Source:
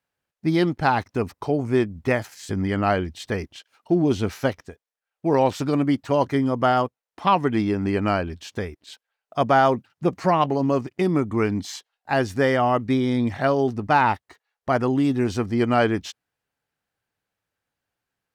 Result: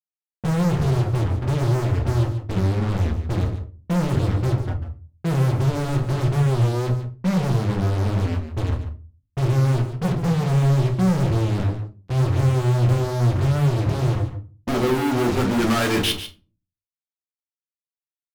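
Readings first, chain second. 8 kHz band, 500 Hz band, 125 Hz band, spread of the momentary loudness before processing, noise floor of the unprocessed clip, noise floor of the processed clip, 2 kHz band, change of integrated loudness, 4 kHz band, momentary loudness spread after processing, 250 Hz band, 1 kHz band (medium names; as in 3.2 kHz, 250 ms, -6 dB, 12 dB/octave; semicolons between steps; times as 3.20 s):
+5.5 dB, -4.0 dB, +10.0 dB, 10 LU, under -85 dBFS, under -85 dBFS, -4.0 dB, +1.0 dB, +4.0 dB, 8 LU, -1.0 dB, -7.5 dB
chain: low-pass sweep 120 Hz -> 4.6 kHz, 14.07–16.34 s; spectral noise reduction 25 dB; treble shelf 2.6 kHz +11 dB; compression 4:1, threshold -28 dBFS, peak gain reduction 14.5 dB; hum notches 50/100/150/200/250/300/350/400/450 Hz; fuzz box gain 54 dB, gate -50 dBFS; on a send: delay 145 ms -11.5 dB; on the sum: simulated room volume 180 m³, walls furnished, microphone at 0.94 m; warped record 33 1/3 rpm, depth 100 cents; trim -8.5 dB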